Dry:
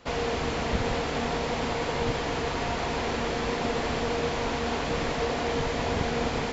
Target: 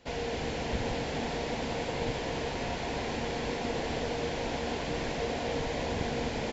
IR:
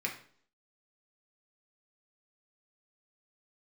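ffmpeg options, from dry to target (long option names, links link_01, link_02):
-filter_complex "[0:a]equalizer=frequency=1200:width=4:gain=-11.5,asplit=2[link_01][link_02];[link_02]asplit=8[link_03][link_04][link_05][link_06][link_07][link_08][link_09][link_10];[link_03]adelay=263,afreqshift=61,volume=-8.5dB[link_11];[link_04]adelay=526,afreqshift=122,volume=-12.7dB[link_12];[link_05]adelay=789,afreqshift=183,volume=-16.8dB[link_13];[link_06]adelay=1052,afreqshift=244,volume=-21dB[link_14];[link_07]adelay=1315,afreqshift=305,volume=-25.1dB[link_15];[link_08]adelay=1578,afreqshift=366,volume=-29.3dB[link_16];[link_09]adelay=1841,afreqshift=427,volume=-33.4dB[link_17];[link_10]adelay=2104,afreqshift=488,volume=-37.6dB[link_18];[link_11][link_12][link_13][link_14][link_15][link_16][link_17][link_18]amix=inputs=8:normalize=0[link_19];[link_01][link_19]amix=inputs=2:normalize=0,volume=-5dB"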